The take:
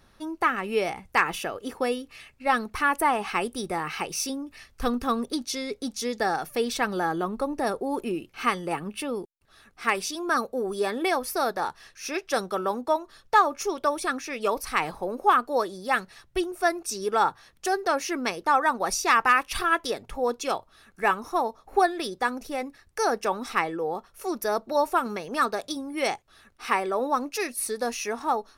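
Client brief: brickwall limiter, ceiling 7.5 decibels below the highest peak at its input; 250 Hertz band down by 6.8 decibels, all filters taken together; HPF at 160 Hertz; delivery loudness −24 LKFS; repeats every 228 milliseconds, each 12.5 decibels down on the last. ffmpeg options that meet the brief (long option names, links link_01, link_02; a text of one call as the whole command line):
ffmpeg -i in.wav -af "highpass=160,equalizer=frequency=250:width_type=o:gain=-8.5,alimiter=limit=-15dB:level=0:latency=1,aecho=1:1:228|456|684:0.237|0.0569|0.0137,volume=5.5dB" out.wav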